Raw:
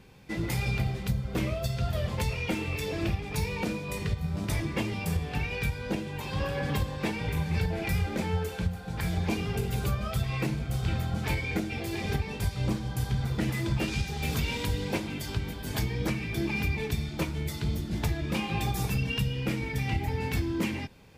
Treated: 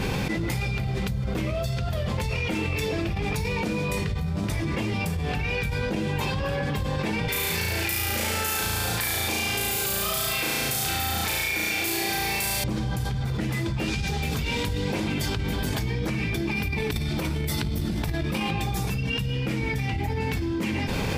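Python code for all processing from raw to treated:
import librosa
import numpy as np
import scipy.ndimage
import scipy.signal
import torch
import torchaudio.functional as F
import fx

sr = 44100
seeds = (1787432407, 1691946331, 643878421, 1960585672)

y = fx.chain(x, sr, fx.riaa(side='recording'),
    fx.notch(hz=180.0, q=5.7),
    fx.room_flutter(wall_m=6.1, rt60_s=1.5), at=(7.28, 12.64))
y = fx.chain(y, sr, fx.high_shelf(hz=9800.0, db=8.0),
    fx.over_compress(threshold_db=-33.0, ratio=-0.5),
    fx.notch(hz=6800.0, q=9.4), at=(16.51, 18.51))
y = fx.high_shelf(y, sr, hz=10000.0, db=-4.0)
y = fx.env_flatten(y, sr, amount_pct=100)
y = y * librosa.db_to_amplitude(-3.0)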